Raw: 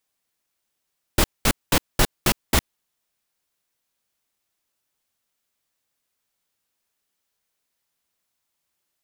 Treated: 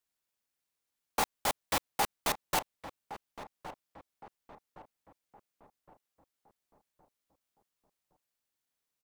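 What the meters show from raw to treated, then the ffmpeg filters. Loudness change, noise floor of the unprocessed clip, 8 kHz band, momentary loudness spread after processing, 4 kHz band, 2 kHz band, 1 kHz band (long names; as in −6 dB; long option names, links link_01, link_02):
−10.5 dB, −79 dBFS, −10.5 dB, 18 LU, −11.0 dB, −10.0 dB, −3.0 dB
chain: -filter_complex "[0:a]asoftclip=type=tanh:threshold=-11.5dB,aeval=exprs='val(0)*sin(2*PI*820*n/s)':channel_layout=same,asplit=2[link_01][link_02];[link_02]adelay=1115,lowpass=frequency=1300:poles=1,volume=-11.5dB,asplit=2[link_03][link_04];[link_04]adelay=1115,lowpass=frequency=1300:poles=1,volume=0.47,asplit=2[link_05][link_06];[link_06]adelay=1115,lowpass=frequency=1300:poles=1,volume=0.47,asplit=2[link_07][link_08];[link_08]adelay=1115,lowpass=frequency=1300:poles=1,volume=0.47,asplit=2[link_09][link_10];[link_10]adelay=1115,lowpass=frequency=1300:poles=1,volume=0.47[link_11];[link_01][link_03][link_05][link_07][link_09][link_11]amix=inputs=6:normalize=0,volume=-6dB"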